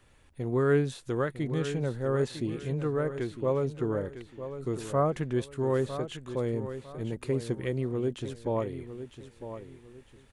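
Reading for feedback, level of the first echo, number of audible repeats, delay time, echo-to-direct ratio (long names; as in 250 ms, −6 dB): 31%, −11.0 dB, 3, 954 ms, −10.5 dB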